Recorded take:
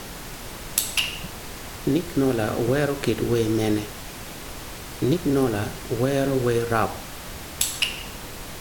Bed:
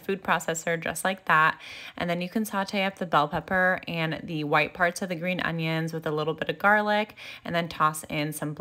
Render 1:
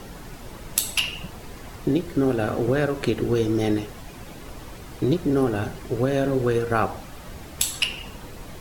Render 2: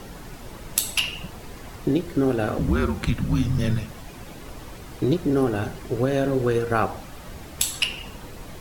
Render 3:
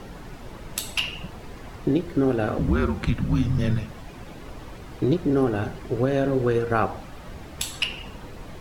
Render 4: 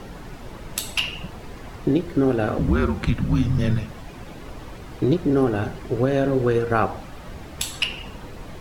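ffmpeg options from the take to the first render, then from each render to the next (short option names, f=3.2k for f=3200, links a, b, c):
-af "afftdn=nr=9:nf=-37"
-filter_complex "[0:a]asettb=1/sr,asplit=3[a][b][c];[a]atrim=end=2.584[d];[b]atrim=start=2.58:end=3.91,asetpts=PTS-STARTPTS,afade=t=in:d=0.004:c=qsin,afade=t=out:st=1.326:d=0.004:c=qsin,afreqshift=-200[e];[c]atrim=start=3.906[f];[d][e]acrossfade=d=0.004:c1=hsin:c2=qsin[g];[g][f]acrossfade=d=0.004:c1=qsin:c2=hsin"
-af "highshelf=f=5.8k:g=-11"
-af "volume=2dB"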